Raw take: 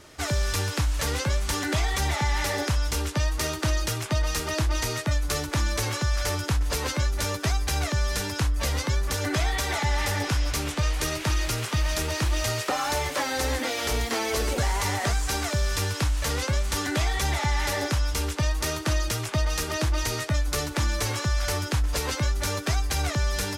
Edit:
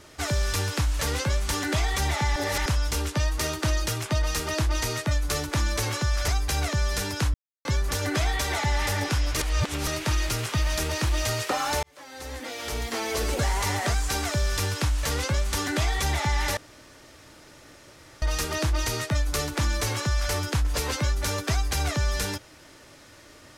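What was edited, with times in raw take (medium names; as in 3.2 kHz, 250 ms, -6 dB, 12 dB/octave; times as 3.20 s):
2.36–2.66 s: reverse
6.28–7.47 s: delete
8.53–8.84 s: mute
10.56–11.06 s: reverse
13.02–14.57 s: fade in
17.76–19.41 s: room tone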